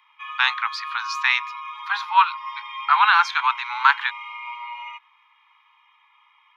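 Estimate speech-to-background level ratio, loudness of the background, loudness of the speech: 13.0 dB, -33.5 LUFS, -20.5 LUFS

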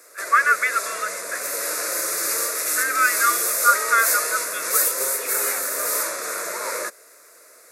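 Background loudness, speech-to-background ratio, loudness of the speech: -22.5 LUFS, 1.0 dB, -21.5 LUFS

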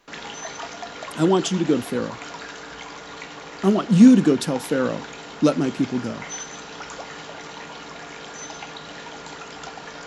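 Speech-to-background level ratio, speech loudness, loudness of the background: 16.0 dB, -19.5 LUFS, -35.5 LUFS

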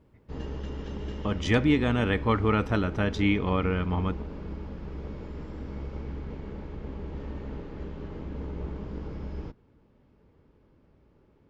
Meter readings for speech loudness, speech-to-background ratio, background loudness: -26.5 LUFS, 12.0 dB, -38.5 LUFS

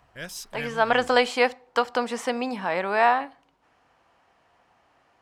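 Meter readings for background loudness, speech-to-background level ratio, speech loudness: -38.5 LUFS, 14.5 dB, -24.0 LUFS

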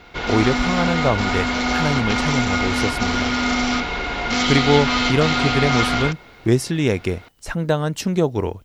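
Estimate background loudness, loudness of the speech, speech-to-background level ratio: -20.5 LUFS, -22.0 LUFS, -1.5 dB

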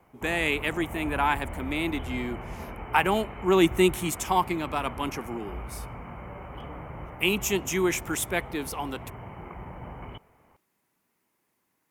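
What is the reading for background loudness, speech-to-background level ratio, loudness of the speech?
-40.0 LUFS, 13.0 dB, -27.0 LUFS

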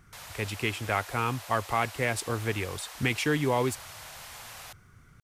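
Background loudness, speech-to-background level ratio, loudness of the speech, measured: -43.0 LUFS, 13.5 dB, -29.5 LUFS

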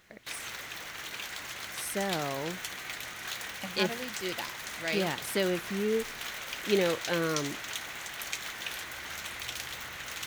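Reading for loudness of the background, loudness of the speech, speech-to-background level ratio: -37.0 LUFS, -32.5 LUFS, 4.5 dB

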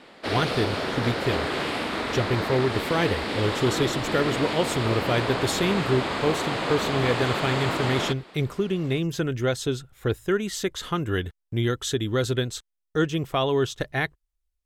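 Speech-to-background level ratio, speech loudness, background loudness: 1.0 dB, -26.5 LUFS, -27.5 LUFS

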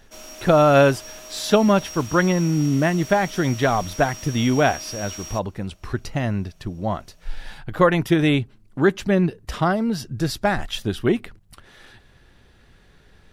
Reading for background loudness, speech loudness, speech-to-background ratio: -35.5 LUFS, -21.0 LUFS, 14.5 dB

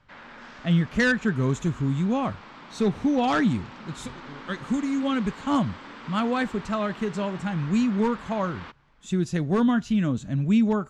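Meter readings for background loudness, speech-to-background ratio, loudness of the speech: -43.0 LUFS, 17.5 dB, -25.5 LUFS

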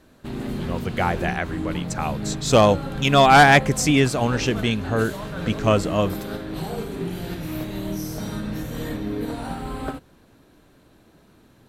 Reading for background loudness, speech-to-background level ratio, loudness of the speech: -30.5 LUFS, 11.0 dB, -19.5 LUFS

